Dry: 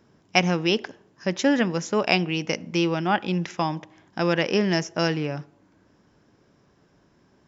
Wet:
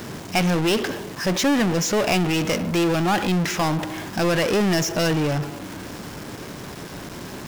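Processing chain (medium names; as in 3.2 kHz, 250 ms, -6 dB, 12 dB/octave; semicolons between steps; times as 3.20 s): power-law waveshaper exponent 0.35; small samples zeroed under -23 dBFS; trim -9 dB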